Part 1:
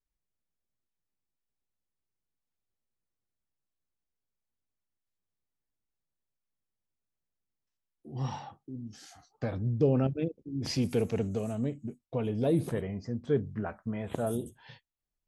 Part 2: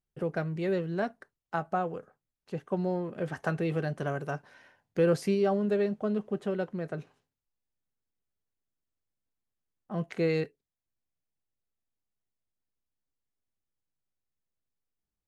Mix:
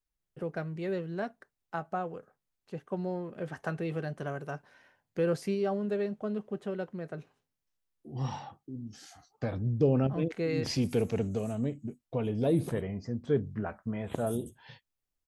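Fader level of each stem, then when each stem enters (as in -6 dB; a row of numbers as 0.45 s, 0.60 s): 0.0 dB, -4.0 dB; 0.00 s, 0.20 s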